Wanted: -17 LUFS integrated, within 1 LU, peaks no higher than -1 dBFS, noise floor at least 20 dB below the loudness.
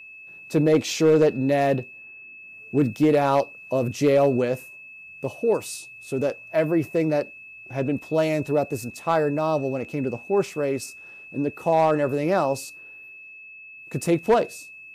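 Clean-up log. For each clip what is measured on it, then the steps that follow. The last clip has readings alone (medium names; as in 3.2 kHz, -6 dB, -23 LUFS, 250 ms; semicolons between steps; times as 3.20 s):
clipped samples 0.4%; clipping level -11.5 dBFS; steady tone 2.6 kHz; tone level -41 dBFS; loudness -23.5 LUFS; peak level -11.5 dBFS; loudness target -17.0 LUFS
-> clip repair -11.5 dBFS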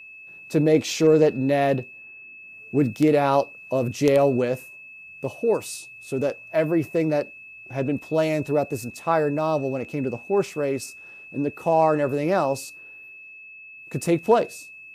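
clipped samples 0.0%; steady tone 2.6 kHz; tone level -41 dBFS
-> band-stop 2.6 kHz, Q 30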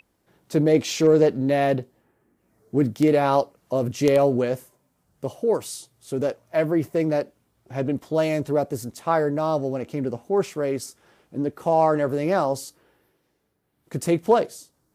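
steady tone not found; loudness -23.0 LUFS; peak level -2.5 dBFS; loudness target -17.0 LUFS
-> trim +6 dB; peak limiter -1 dBFS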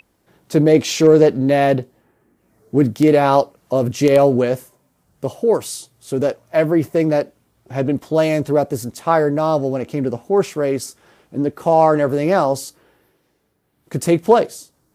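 loudness -17.0 LUFS; peak level -1.0 dBFS; noise floor -65 dBFS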